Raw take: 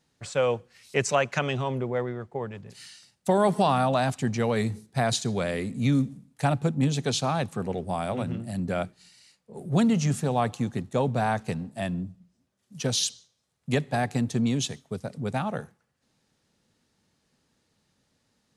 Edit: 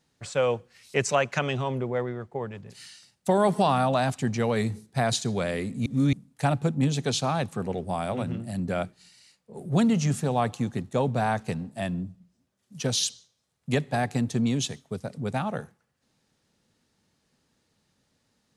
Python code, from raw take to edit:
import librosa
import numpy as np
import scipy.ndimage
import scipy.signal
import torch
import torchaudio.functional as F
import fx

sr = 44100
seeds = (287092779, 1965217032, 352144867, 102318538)

y = fx.edit(x, sr, fx.reverse_span(start_s=5.86, length_s=0.27), tone=tone)